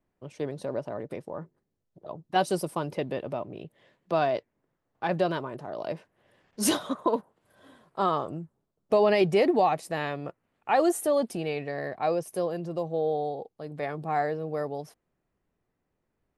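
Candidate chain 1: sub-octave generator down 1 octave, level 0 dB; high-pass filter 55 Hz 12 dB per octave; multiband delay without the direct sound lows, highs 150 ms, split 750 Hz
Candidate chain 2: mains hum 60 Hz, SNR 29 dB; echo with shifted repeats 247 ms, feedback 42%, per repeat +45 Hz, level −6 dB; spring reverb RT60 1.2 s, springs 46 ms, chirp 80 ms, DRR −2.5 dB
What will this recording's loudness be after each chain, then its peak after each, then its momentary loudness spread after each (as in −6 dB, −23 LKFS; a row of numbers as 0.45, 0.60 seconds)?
−30.0, −24.0 LKFS; −9.5, −5.5 dBFS; 16, 16 LU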